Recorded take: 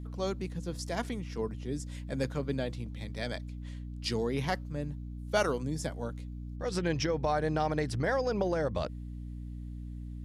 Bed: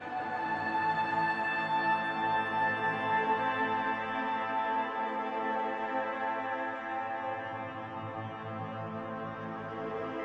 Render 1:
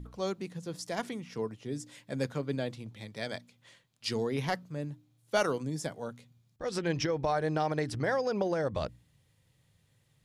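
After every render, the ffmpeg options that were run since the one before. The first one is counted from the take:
-af "bandreject=f=60:t=h:w=4,bandreject=f=120:t=h:w=4,bandreject=f=180:t=h:w=4,bandreject=f=240:t=h:w=4,bandreject=f=300:t=h:w=4"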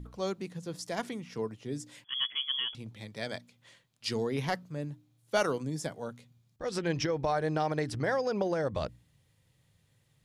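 -filter_complex "[0:a]asettb=1/sr,asplit=3[s0][s1][s2];[s0]atrim=end=2.044[s3];[s1]atrim=start=2.04:end=2.75,asetpts=PTS-STARTPTS,afade=t=in:d=0.004:c=qsin,afade=t=out:st=0.706:d=0.004:c=qsin,lowpass=f=3000:t=q:w=0.5098,lowpass=f=3000:t=q:w=0.6013,lowpass=f=3000:t=q:w=0.9,lowpass=f=3000:t=q:w=2.563,afreqshift=-3500[s4];[s2]atrim=start=2.746[s5];[s3][s4]acrossfade=d=0.004:c1=hsin:c2=qsin[s6];[s6][s5]acrossfade=d=0.004:c1=qsin:c2=hsin"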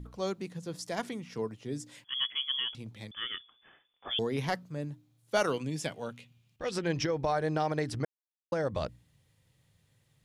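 -filter_complex "[0:a]asettb=1/sr,asplit=3[s0][s1][s2];[s0]atrim=end=3.114[s3];[s1]atrim=start=3.11:end=4.19,asetpts=PTS-STARTPTS,afade=t=in:d=0.004:c=qsin,afade=t=out:st=1.076:d=0.004:c=qsin,lowpass=f=3100:t=q:w=0.5098,lowpass=f=3100:t=q:w=0.6013,lowpass=f=3100:t=q:w=0.9,lowpass=f=3100:t=q:w=2.563,afreqshift=-3600[s4];[s2]atrim=start=4.186[s5];[s3][s4]acrossfade=d=0.004:c1=hsin:c2=qsin[s6];[s6][s5]acrossfade=d=0.004:c1=qsin:c2=hsin,asettb=1/sr,asplit=3[s7][s8][s9];[s7]atrim=end=5.474[s10];[s8]atrim=start=5.47:end=6.71,asetpts=PTS-STARTPTS,afade=t=in:d=0.004:c=qsin,afade=t=out:st=1.236:d=0.004:c=qsin,equalizer=f=2700:t=o:w=0.67:g=13.5[s11];[s9]atrim=start=6.706[s12];[s10][s11]acrossfade=d=0.004:c1=hsin:c2=qsin[s13];[s13][s12]acrossfade=d=0.004:c1=qsin:c2=hsin,asplit=3[s14][s15][s16];[s14]atrim=end=8.05,asetpts=PTS-STARTPTS,afade=t=out:st=8.046:d=0.004:c=hsin[s17];[s15]atrim=start=8.05:end=8.52,asetpts=PTS-STARTPTS,volume=0[s18];[s16]atrim=start=8.52,asetpts=PTS-STARTPTS,afade=t=in:d=0.004:c=hsin[s19];[s17][s18][s19]concat=n=3:v=0:a=1"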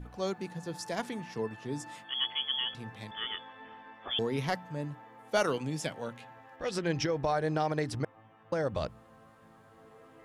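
-filter_complex "[1:a]volume=0.112[s0];[0:a][s0]amix=inputs=2:normalize=0"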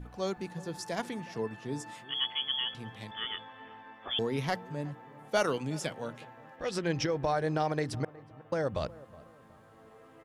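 -filter_complex "[0:a]asplit=2[s0][s1];[s1]adelay=367,lowpass=f=1100:p=1,volume=0.112,asplit=2[s2][s3];[s3]adelay=367,lowpass=f=1100:p=1,volume=0.41,asplit=2[s4][s5];[s5]adelay=367,lowpass=f=1100:p=1,volume=0.41[s6];[s0][s2][s4][s6]amix=inputs=4:normalize=0"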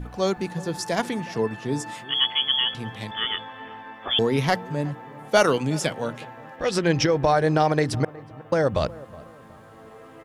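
-af "volume=3.16"

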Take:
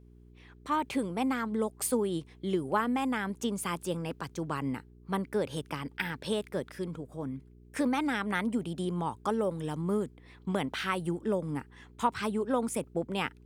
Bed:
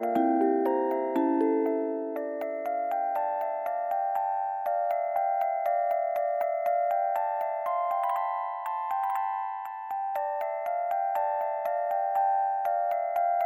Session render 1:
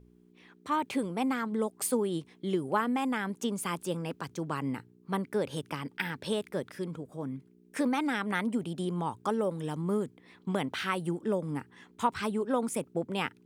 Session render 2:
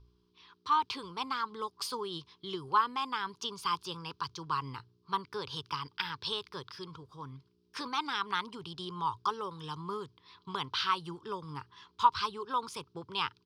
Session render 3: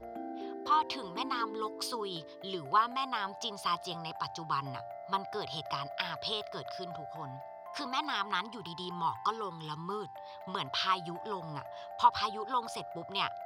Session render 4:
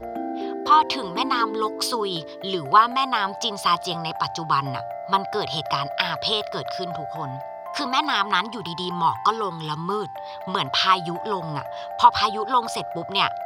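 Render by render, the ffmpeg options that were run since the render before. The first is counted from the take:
-af "bandreject=f=60:t=h:w=4,bandreject=f=120:t=h:w=4"
-af "firequalizer=gain_entry='entry(110,0);entry(220,-19);entry(400,-7);entry(620,-22);entry(1000,8);entry(1900,-9);entry(3100,5);entry(4900,11);entry(7500,-13)':delay=0.05:min_phase=1"
-filter_complex "[1:a]volume=0.141[s0];[0:a][s0]amix=inputs=2:normalize=0"
-af "volume=3.98,alimiter=limit=0.794:level=0:latency=1"

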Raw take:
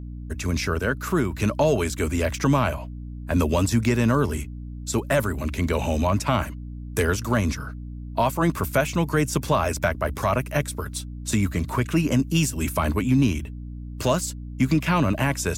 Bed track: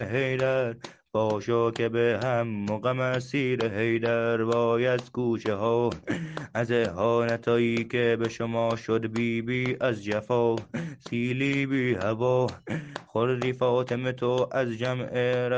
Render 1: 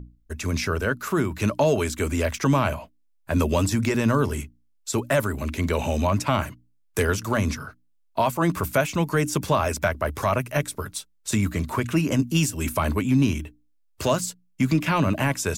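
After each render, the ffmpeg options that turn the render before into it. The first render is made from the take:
-af "bandreject=f=60:t=h:w=6,bandreject=f=120:t=h:w=6,bandreject=f=180:t=h:w=6,bandreject=f=240:t=h:w=6,bandreject=f=300:t=h:w=6"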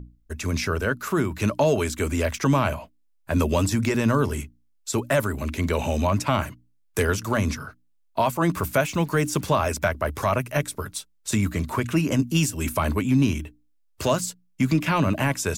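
-filter_complex "[0:a]asettb=1/sr,asplit=3[s0][s1][s2];[s0]atrim=end=8.554[s3];[s1]atrim=start=8.55:end=9.46,asetpts=PTS-STARTPTS,afade=t=in:d=0.004:c=qsin,afade=t=out:st=0.906:d=0.004:c=qsin,acrusher=bits=7:mix=0:aa=0.5[s4];[s2]atrim=start=9.456[s5];[s3][s4]acrossfade=d=0.004:c1=hsin:c2=qsin[s6];[s6][s5]acrossfade=d=0.004:c1=qsin:c2=hsin"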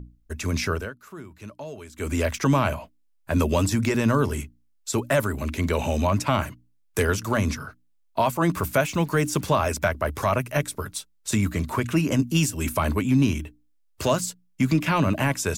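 -filter_complex "[0:a]asplit=3[s0][s1][s2];[s0]atrim=end=0.92,asetpts=PTS-STARTPTS,afade=t=out:st=0.72:d=0.2:silence=0.141254[s3];[s1]atrim=start=0.92:end=1.93,asetpts=PTS-STARTPTS,volume=0.141[s4];[s2]atrim=start=1.93,asetpts=PTS-STARTPTS,afade=t=in:d=0.2:silence=0.141254[s5];[s3][s4][s5]concat=n=3:v=0:a=1"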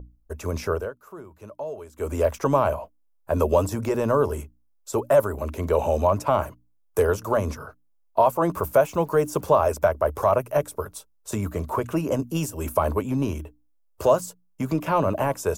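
-af "equalizer=f=125:t=o:w=1:g=-5,equalizer=f=250:t=o:w=1:g=-7,equalizer=f=500:t=o:w=1:g=8,equalizer=f=1000:t=o:w=1:g=4,equalizer=f=2000:t=o:w=1:g=-10,equalizer=f=4000:t=o:w=1:g=-9,equalizer=f=8000:t=o:w=1:g=-5"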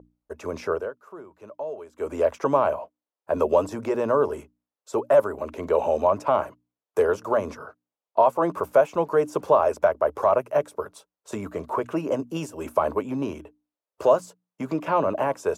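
-af "highpass=370,aemphasis=mode=reproduction:type=bsi"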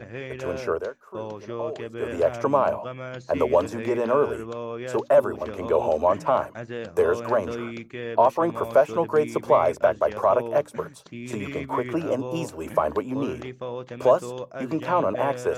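-filter_complex "[1:a]volume=0.355[s0];[0:a][s0]amix=inputs=2:normalize=0"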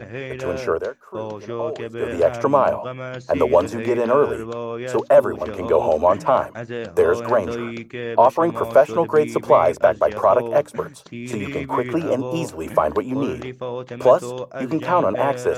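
-af "volume=1.68"

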